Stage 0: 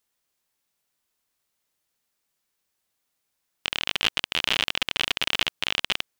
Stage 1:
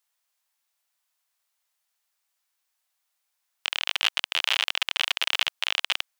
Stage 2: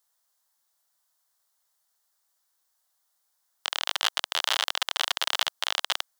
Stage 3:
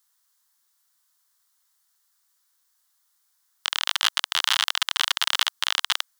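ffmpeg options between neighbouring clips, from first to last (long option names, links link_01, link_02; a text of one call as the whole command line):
ffmpeg -i in.wav -af "highpass=frequency=660:width=0.5412,highpass=frequency=660:width=1.3066" out.wav
ffmpeg -i in.wav -af "equalizer=frequency=2500:width=2.1:gain=-13.5,volume=4.5dB" out.wav
ffmpeg -i in.wav -af "highpass=frequency=1000:width=0.5412,highpass=frequency=1000:width=1.3066,acontrast=20" out.wav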